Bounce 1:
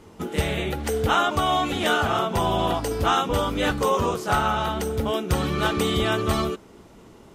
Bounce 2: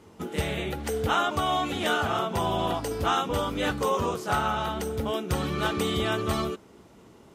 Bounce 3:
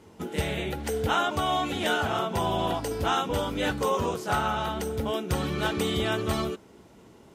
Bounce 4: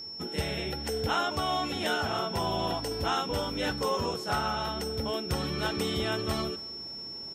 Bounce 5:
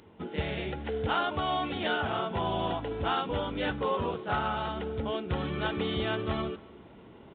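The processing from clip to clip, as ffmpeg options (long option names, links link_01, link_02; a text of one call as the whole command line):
ffmpeg -i in.wav -af "highpass=58,volume=-4dB" out.wav
ffmpeg -i in.wav -af "bandreject=frequency=1200:width=12" out.wav
ffmpeg -i in.wav -af "areverse,acompressor=mode=upward:threshold=-40dB:ratio=2.5,areverse,aeval=exprs='val(0)+0.0178*sin(2*PI*5400*n/s)':channel_layout=same,aecho=1:1:275:0.0668,volume=-3.5dB" out.wav
ffmpeg -i in.wav -af "aresample=8000,aresample=44100" out.wav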